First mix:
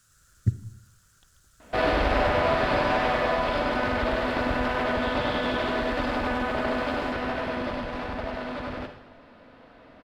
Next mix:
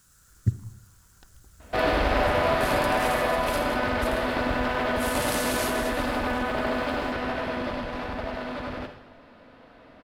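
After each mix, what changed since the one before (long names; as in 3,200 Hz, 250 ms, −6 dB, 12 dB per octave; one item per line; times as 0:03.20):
first sound: remove transistor ladder low-pass 3,600 Hz, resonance 80%
master: add high-shelf EQ 11,000 Hz +9.5 dB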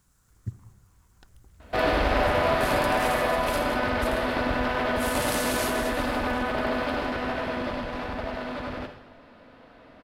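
speech −10.5 dB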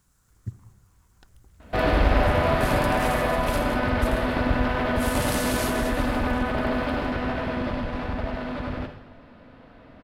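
second sound: add bass and treble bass +8 dB, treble −4 dB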